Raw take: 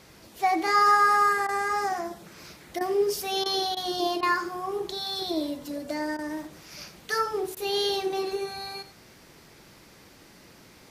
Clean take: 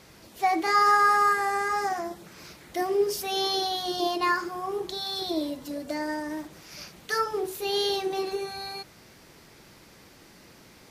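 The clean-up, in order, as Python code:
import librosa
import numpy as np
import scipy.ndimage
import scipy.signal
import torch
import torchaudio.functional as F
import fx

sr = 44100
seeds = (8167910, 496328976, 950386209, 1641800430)

y = fx.fix_interpolate(x, sr, at_s=(1.47, 2.79, 3.44, 3.75, 4.21, 6.17, 7.55), length_ms=16.0)
y = fx.fix_echo_inverse(y, sr, delay_ms=86, level_db=-15.0)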